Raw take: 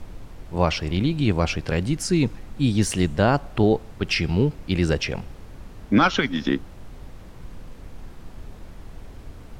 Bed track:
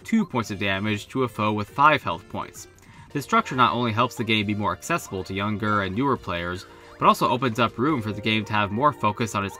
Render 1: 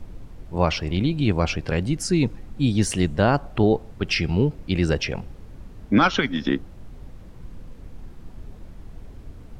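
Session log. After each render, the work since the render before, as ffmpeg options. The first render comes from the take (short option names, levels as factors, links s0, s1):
-af "afftdn=nr=6:nf=-43"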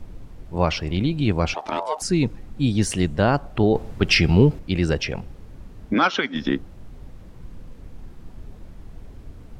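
-filter_complex "[0:a]asettb=1/sr,asplit=3[s0][s1][s2];[s0]atrim=end=1.544[s3];[s1]atrim=start=1.54:end=2.02,asetpts=PTS-STARTPTS,afade=t=in:d=0.004:c=qsin,afade=t=out:st=0.476:d=0.004:c=qsin,aeval=exprs='val(0)*sin(2*PI*770*n/s)':c=same[s4];[s2]atrim=start=2.016[s5];[s3][s4]acrossfade=d=0.004:c1=hsin:c2=qsin[s6];[s6][s5]acrossfade=d=0.004:c1=qsin:c2=hsin,asettb=1/sr,asplit=3[s7][s8][s9];[s7]atrim=end=3.754[s10];[s8]atrim=start=3.75:end=4.59,asetpts=PTS-STARTPTS,afade=t=in:d=0.004:c=qsin,afade=t=out:st=0.836:d=0.004:c=qsin,acontrast=59[s11];[s9]atrim=start=4.586[s12];[s10][s11]acrossfade=d=0.004:c1=hsin:c2=qsin[s13];[s13][s12]acrossfade=d=0.004:c1=qsin:c2=hsin,asplit=3[s14][s15][s16];[s14]afade=t=out:st=5.93:d=0.02[s17];[s15]highpass=280,lowpass=7200,afade=t=in:st=5.93:d=0.02,afade=t=out:st=6.34:d=0.02[s18];[s16]afade=t=in:st=6.34:d=0.02[s19];[s17][s18][s19]amix=inputs=3:normalize=0"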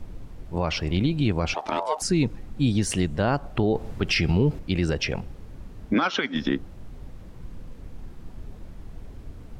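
-af "alimiter=limit=0.224:level=0:latency=1:release=105"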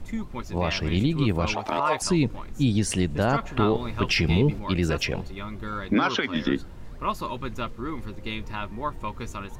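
-filter_complex "[1:a]volume=0.299[s0];[0:a][s0]amix=inputs=2:normalize=0"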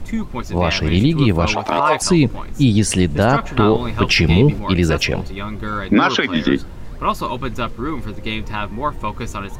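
-af "volume=2.66,alimiter=limit=0.708:level=0:latency=1"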